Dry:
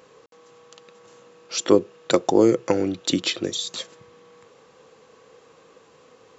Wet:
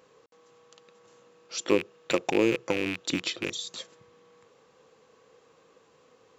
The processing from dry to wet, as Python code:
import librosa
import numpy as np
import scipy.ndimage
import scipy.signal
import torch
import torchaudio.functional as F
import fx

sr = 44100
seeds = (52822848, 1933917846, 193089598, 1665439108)

y = fx.rattle_buzz(x, sr, strikes_db=-37.0, level_db=-12.0)
y = F.gain(torch.from_numpy(y), -7.5).numpy()